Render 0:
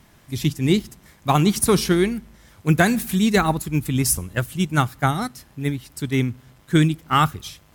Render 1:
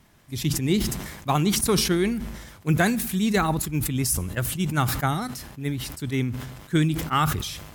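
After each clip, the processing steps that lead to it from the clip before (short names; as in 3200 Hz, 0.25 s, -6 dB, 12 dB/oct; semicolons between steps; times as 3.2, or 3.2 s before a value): sustainer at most 51 dB/s; gain -5 dB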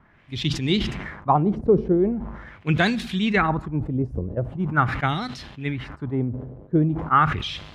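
LFO low-pass sine 0.42 Hz 470–3800 Hz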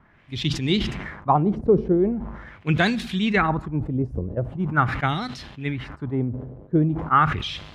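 nothing audible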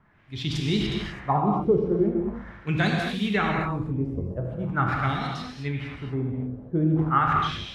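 non-linear reverb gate 0.28 s flat, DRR -0.5 dB; gain -6 dB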